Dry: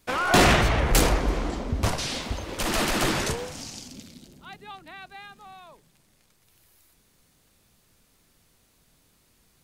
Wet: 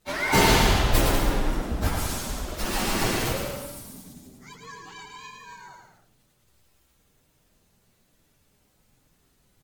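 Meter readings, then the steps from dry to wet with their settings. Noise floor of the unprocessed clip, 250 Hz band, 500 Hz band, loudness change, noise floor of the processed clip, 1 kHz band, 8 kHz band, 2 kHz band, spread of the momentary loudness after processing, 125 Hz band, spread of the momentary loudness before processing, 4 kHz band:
-64 dBFS, -0.5 dB, -1.0 dB, -0.5 dB, -66 dBFS, -0.5 dB, 0.0 dB, -1.0 dB, 23 LU, 0.0 dB, 24 LU, 0.0 dB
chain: frequency axis rescaled in octaves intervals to 122%; bouncing-ball echo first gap 110 ms, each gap 0.75×, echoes 5; trim +2 dB; Vorbis 96 kbps 48 kHz

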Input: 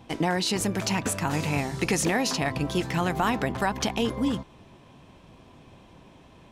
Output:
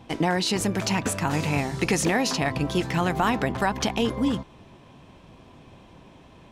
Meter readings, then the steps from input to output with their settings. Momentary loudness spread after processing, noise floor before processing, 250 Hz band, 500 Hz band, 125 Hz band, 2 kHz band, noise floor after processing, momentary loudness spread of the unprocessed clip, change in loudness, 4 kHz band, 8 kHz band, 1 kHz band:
3 LU, -53 dBFS, +2.0 dB, +2.0 dB, +2.0 dB, +2.0 dB, -51 dBFS, 3 LU, +2.0 dB, +1.5 dB, +0.5 dB, +2.0 dB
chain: treble shelf 8.1 kHz -4 dB; trim +2 dB

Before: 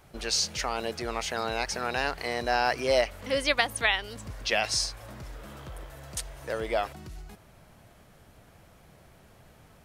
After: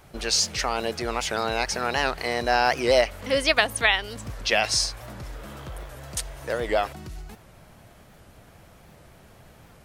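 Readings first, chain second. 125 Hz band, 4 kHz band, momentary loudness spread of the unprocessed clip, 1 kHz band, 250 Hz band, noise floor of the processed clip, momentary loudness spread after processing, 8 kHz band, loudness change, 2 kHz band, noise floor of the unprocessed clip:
+4.5 dB, +4.5 dB, 19 LU, +4.5 dB, +5.0 dB, -52 dBFS, 19 LU, +4.5 dB, +4.5 dB, +4.5 dB, -56 dBFS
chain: warped record 78 rpm, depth 160 cents; trim +4.5 dB

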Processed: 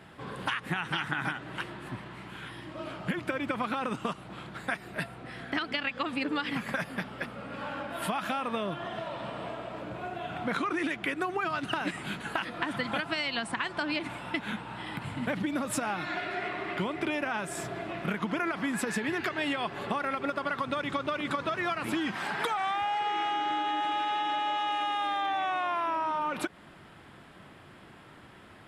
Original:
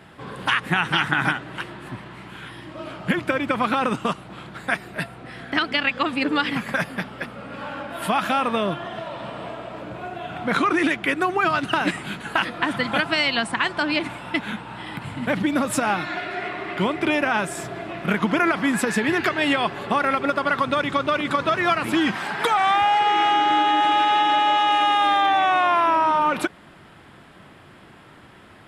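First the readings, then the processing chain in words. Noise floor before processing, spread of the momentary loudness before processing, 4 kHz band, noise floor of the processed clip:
-48 dBFS, 15 LU, -10.0 dB, -52 dBFS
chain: compression, threshold -23 dBFS, peak gain reduction 8 dB; trim -4.5 dB

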